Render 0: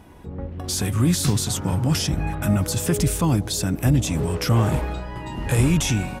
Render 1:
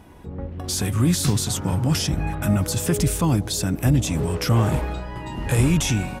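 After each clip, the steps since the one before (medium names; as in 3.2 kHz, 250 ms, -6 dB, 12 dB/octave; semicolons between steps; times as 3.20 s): no audible change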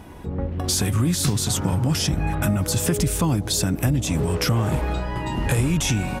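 compression 4:1, threshold -24 dBFS, peak gain reduction 9 dB; trim +5.5 dB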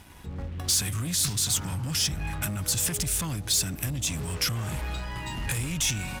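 waveshaping leveller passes 2; amplifier tone stack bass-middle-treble 5-5-5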